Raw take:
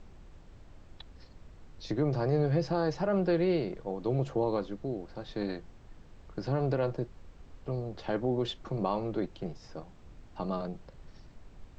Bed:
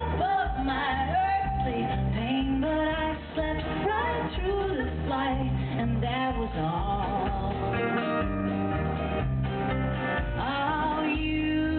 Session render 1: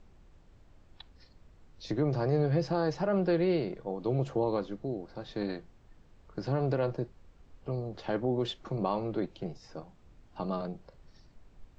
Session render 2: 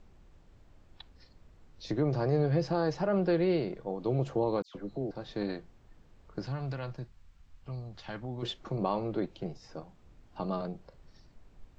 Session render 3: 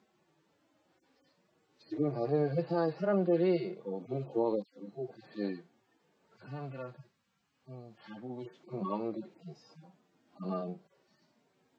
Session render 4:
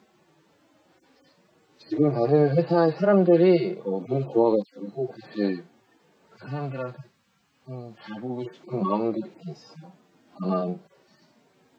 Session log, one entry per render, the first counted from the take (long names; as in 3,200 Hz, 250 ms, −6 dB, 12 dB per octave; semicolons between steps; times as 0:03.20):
noise reduction from a noise print 6 dB
0:04.62–0:05.11: all-pass dispersion lows, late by 129 ms, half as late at 2,200 Hz; 0:06.46–0:08.43: parametric band 420 Hz −14.5 dB 1.9 octaves
harmonic-percussive split with one part muted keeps harmonic; high-pass filter 170 Hz 24 dB per octave
level +10.5 dB